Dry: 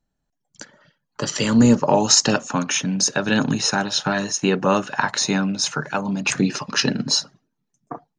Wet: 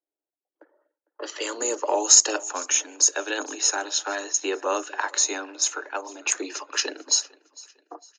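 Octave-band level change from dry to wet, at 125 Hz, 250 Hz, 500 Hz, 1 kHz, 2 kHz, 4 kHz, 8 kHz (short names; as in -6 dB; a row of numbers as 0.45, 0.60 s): under -40 dB, -18.0 dB, -6.0 dB, -6.0 dB, -6.0 dB, -5.0 dB, +2.5 dB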